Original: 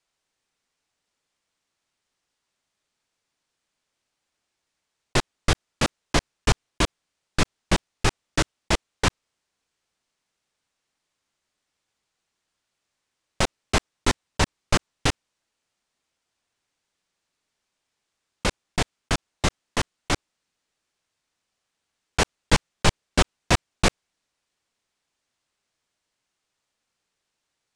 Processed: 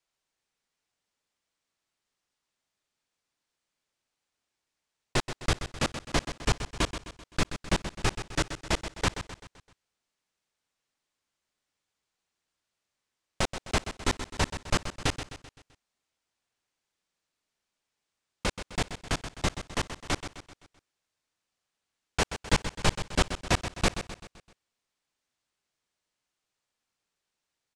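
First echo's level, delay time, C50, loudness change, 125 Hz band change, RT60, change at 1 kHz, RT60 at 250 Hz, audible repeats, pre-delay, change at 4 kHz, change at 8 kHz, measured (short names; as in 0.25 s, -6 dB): -10.5 dB, 0.129 s, none, -5.0 dB, -5.0 dB, none, -5.0 dB, none, 4, none, -5.0 dB, -5.0 dB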